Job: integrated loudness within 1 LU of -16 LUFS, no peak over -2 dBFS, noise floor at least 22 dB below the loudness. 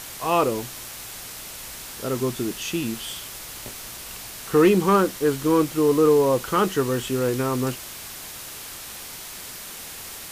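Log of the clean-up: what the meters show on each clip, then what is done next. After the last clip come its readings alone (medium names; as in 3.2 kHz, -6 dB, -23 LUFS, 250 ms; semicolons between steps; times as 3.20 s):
noise floor -38 dBFS; noise floor target -44 dBFS; loudness -22.0 LUFS; peak level -8.0 dBFS; loudness target -16.0 LUFS
-> noise print and reduce 6 dB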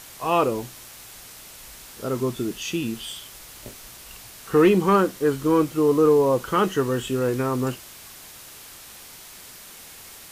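noise floor -44 dBFS; loudness -22.0 LUFS; peak level -8.5 dBFS; loudness target -16.0 LUFS
-> trim +6 dB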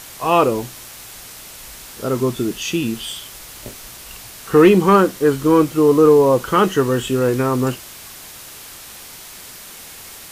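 loudness -16.0 LUFS; peak level -2.5 dBFS; noise floor -38 dBFS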